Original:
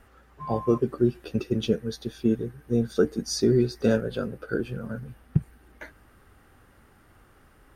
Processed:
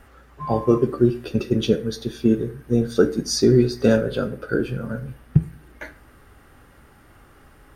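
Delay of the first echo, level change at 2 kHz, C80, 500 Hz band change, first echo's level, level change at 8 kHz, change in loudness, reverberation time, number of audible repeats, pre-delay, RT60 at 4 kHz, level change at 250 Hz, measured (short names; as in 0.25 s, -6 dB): none, +6.0 dB, 20.5 dB, +5.5 dB, none, +5.5 dB, +5.5 dB, 0.45 s, none, 3 ms, 0.40 s, +5.5 dB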